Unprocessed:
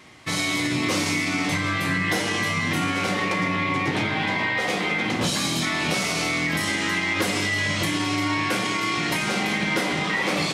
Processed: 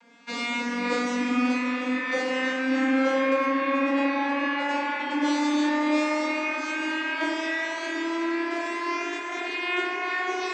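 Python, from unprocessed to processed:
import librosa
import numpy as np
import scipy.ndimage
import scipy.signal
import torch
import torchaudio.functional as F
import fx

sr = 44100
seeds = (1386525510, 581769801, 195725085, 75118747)

p1 = fx.vocoder_glide(x, sr, note=58, semitones=8)
p2 = scipy.signal.sosfilt(scipy.signal.butter(4, 290.0, 'highpass', fs=sr, output='sos'), p1)
p3 = fx.rider(p2, sr, range_db=4, speed_s=2.0)
p4 = p3 + fx.echo_wet_bandpass(p3, sr, ms=385, feedback_pct=73, hz=1500.0, wet_db=-7.5, dry=0)
p5 = fx.rev_fdn(p4, sr, rt60_s=0.41, lf_ratio=1.05, hf_ratio=0.7, size_ms=33.0, drr_db=-3.5)
y = p5 * 10.0 ** (-4.5 / 20.0)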